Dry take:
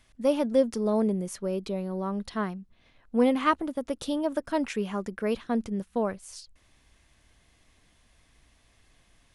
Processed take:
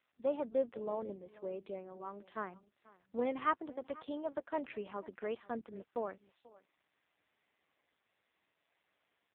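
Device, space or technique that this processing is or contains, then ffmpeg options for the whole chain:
satellite phone: -af "highpass=360,lowpass=3100,lowpass=7800,aecho=1:1:489:0.0891,volume=0.422" -ar 8000 -c:a libopencore_amrnb -b:a 5900

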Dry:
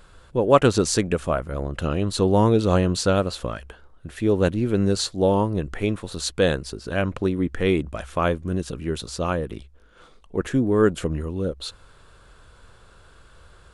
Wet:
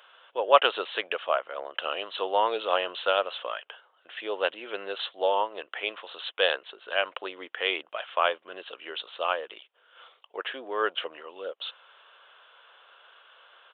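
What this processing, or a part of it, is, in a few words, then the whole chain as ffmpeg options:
musical greeting card: -af "aresample=8000,aresample=44100,highpass=f=590:w=0.5412,highpass=f=590:w=1.3066,equalizer=f=3000:t=o:w=0.34:g=9.5"

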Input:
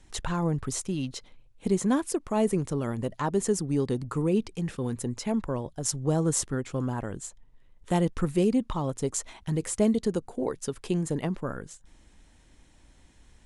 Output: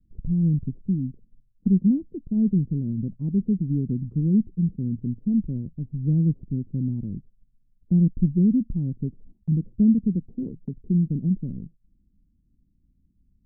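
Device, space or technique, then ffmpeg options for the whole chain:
the neighbour's flat through the wall: -af "lowpass=f=260:w=0.5412,lowpass=f=260:w=1.3066,equalizer=f=190:t=o:w=0.75:g=6,agate=range=0.282:threshold=0.00447:ratio=16:detection=peak,volume=1.5"

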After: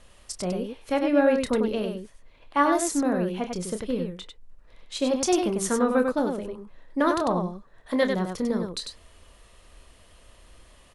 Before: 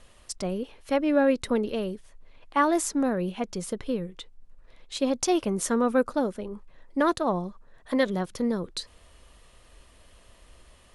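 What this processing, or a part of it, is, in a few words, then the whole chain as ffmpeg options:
slapback doubling: -filter_complex "[0:a]asplit=3[s0][s1][s2];[s1]adelay=28,volume=0.355[s3];[s2]adelay=97,volume=0.562[s4];[s0][s3][s4]amix=inputs=3:normalize=0"

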